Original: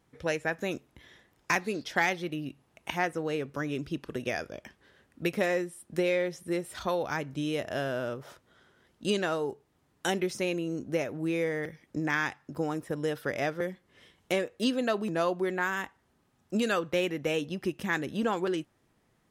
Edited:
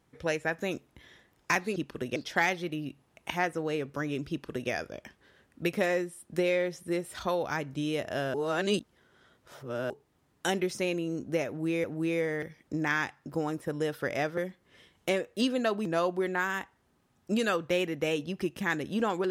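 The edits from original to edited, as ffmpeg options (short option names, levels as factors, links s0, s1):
-filter_complex "[0:a]asplit=6[s0][s1][s2][s3][s4][s5];[s0]atrim=end=1.762[s6];[s1]atrim=start=3.898:end=4.302[s7];[s2]atrim=start=1.758:end=7.942[s8];[s3]atrim=start=7.938:end=9.502,asetpts=PTS-STARTPTS,areverse[s9];[s4]atrim=start=9.498:end=11.442[s10];[s5]atrim=start=11.068[s11];[s6][s7]acrossfade=d=0.004:c1=hsin:c2=hsin[s12];[s12][s8]acrossfade=d=0.004:c1=hsin:c2=hsin[s13];[s13][s9]acrossfade=d=0.004:c1=hsin:c2=hsin[s14];[s14][s10]acrossfade=d=0.004:c1=hsin:c2=hsin[s15];[s15][s11]acrossfade=d=0.004:c1=hsin:c2=hsin"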